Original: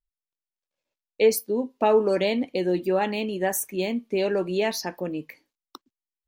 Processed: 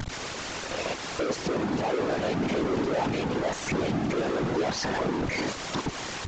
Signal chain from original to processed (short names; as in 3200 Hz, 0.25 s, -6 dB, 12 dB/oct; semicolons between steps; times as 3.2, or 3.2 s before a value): infinite clipping; HPF 55 Hz; high shelf 2300 Hz -11 dB; in parallel at +2.5 dB: limiter -32.5 dBFS, peak gain reduction 10.5 dB; on the sum: compressor, threshold -26 dBFS, peak gain reduction 4 dB; whisperiser; vibrato 1.5 Hz 35 cents; downsampling 16000 Hz